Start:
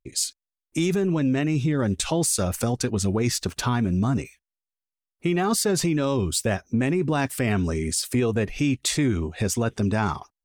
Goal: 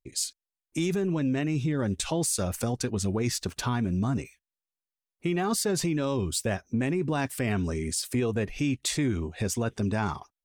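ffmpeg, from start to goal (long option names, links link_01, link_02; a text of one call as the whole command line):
ffmpeg -i in.wav -af "bandreject=frequency=1300:width=27,volume=-4.5dB" out.wav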